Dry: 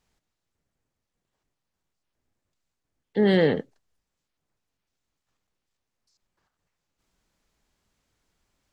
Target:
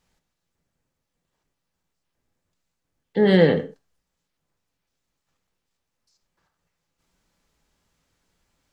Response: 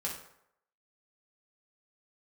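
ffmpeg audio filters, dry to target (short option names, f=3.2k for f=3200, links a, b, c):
-filter_complex "[0:a]asplit=2[a][b];[1:a]atrim=start_sample=2205,atrim=end_sample=6174[c];[b][c]afir=irnorm=-1:irlink=0,volume=-5.5dB[d];[a][d]amix=inputs=2:normalize=0"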